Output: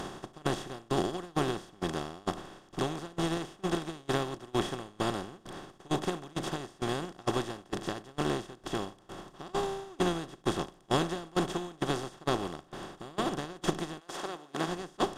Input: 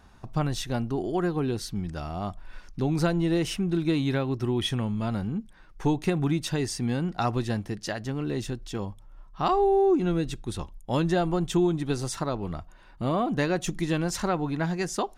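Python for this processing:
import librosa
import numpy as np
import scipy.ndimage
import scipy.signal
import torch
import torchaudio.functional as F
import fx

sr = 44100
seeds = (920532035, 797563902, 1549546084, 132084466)

y = fx.bin_compress(x, sr, power=0.2)
y = fx.highpass(y, sr, hz=fx.line((13.99, 560.0), (14.66, 160.0)), slope=12, at=(13.99, 14.66), fade=0.02)
y = y + 10.0 ** (-16.5 / 20.0) * np.pad(y, (int(384 * sr / 1000.0), 0))[:len(y)]
y = fx.tremolo_shape(y, sr, shape='saw_down', hz=2.2, depth_pct=80)
y = fx.upward_expand(y, sr, threshold_db=-29.0, expansion=2.5)
y = F.gain(torch.from_numpy(y), -7.5).numpy()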